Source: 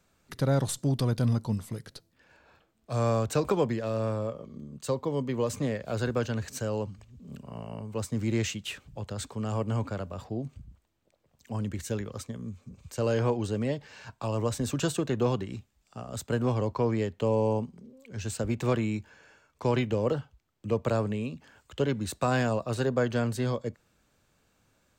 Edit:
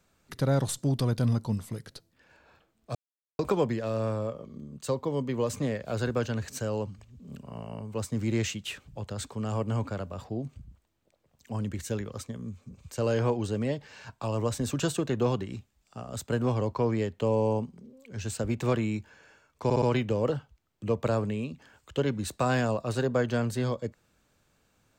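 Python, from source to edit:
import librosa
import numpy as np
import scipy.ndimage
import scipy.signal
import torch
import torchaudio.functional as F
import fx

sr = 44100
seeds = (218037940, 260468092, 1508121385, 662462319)

y = fx.edit(x, sr, fx.silence(start_s=2.95, length_s=0.44),
    fx.stutter(start_s=19.64, slice_s=0.06, count=4), tone=tone)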